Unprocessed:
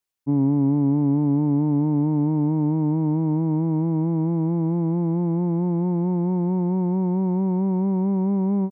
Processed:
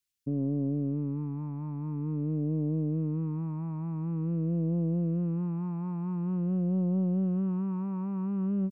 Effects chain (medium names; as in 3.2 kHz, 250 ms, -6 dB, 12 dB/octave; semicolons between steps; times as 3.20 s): peak limiter -21.5 dBFS, peak gain reduction 9 dB; phase shifter stages 2, 0.47 Hz, lowest notch 370–1000 Hz; loudspeaker Doppler distortion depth 0.33 ms